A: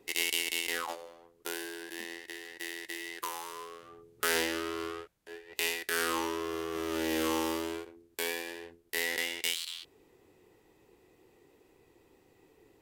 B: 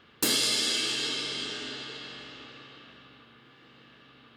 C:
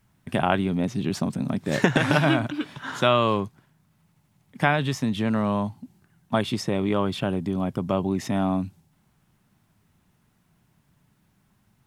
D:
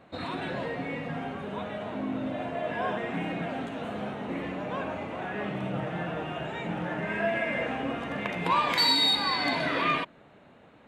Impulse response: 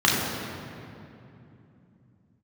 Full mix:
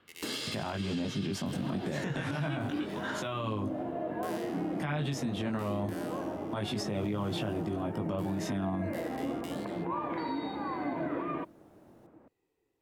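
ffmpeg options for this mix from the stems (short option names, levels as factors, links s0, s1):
-filter_complex "[0:a]volume=0.141[s0];[1:a]lowpass=f=2600:p=1,volume=0.473[s1];[2:a]flanger=delay=18.5:depth=2.7:speed=0.27,adelay=200,volume=1[s2];[3:a]lowpass=1000,equalizer=f=330:t=o:w=0.24:g=13.5,adelay=1400,volume=0.668[s3];[s0][s1][s2][s3]amix=inputs=4:normalize=0,acrossover=split=150[s4][s5];[s5]acompressor=threshold=0.0447:ratio=6[s6];[s4][s6]amix=inputs=2:normalize=0,alimiter=level_in=1.12:limit=0.0631:level=0:latency=1:release=59,volume=0.891"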